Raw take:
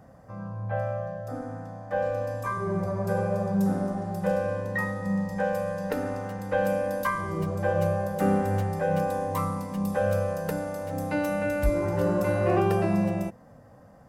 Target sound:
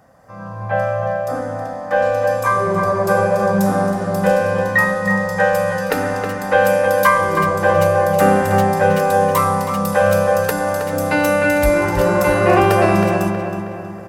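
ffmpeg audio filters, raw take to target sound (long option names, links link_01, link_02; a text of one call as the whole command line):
ffmpeg -i in.wav -filter_complex "[0:a]lowshelf=frequency=490:gain=-11.5,asplit=2[link_01][link_02];[link_02]adelay=319,lowpass=frequency=3200:poles=1,volume=-6dB,asplit=2[link_03][link_04];[link_04]adelay=319,lowpass=frequency=3200:poles=1,volume=0.51,asplit=2[link_05][link_06];[link_06]adelay=319,lowpass=frequency=3200:poles=1,volume=0.51,asplit=2[link_07][link_08];[link_08]adelay=319,lowpass=frequency=3200:poles=1,volume=0.51,asplit=2[link_09][link_10];[link_10]adelay=319,lowpass=frequency=3200:poles=1,volume=0.51,asplit=2[link_11][link_12];[link_12]adelay=319,lowpass=frequency=3200:poles=1,volume=0.51[link_13];[link_01][link_03][link_05][link_07][link_09][link_11][link_13]amix=inputs=7:normalize=0,dynaudnorm=framelen=160:gausssize=5:maxgain=9.5dB,volume=6.5dB" out.wav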